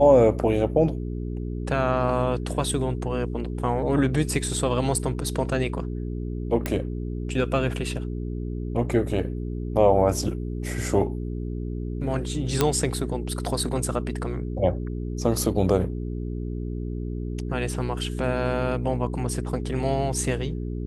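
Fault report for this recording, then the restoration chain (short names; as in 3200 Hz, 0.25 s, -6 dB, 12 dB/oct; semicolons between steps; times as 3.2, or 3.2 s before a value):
hum 60 Hz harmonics 7 -30 dBFS
6.66 pop
12.61 pop -5 dBFS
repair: de-click; de-hum 60 Hz, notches 7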